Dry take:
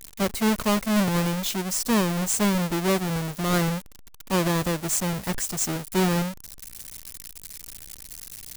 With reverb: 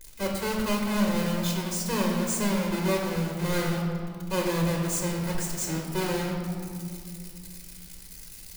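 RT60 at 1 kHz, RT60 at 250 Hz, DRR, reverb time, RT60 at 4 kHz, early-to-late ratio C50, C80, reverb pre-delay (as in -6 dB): 2.2 s, 3.4 s, -0.5 dB, 2.4 s, 1.4 s, 2.5 dB, 4.5 dB, 4 ms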